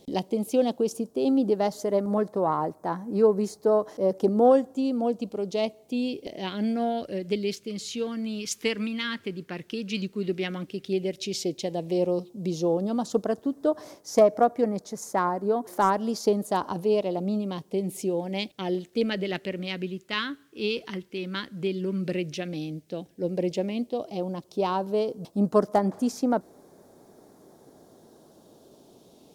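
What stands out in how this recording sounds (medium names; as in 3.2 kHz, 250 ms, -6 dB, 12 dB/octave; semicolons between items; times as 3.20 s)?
phasing stages 2, 0.084 Hz, lowest notch 710–2700 Hz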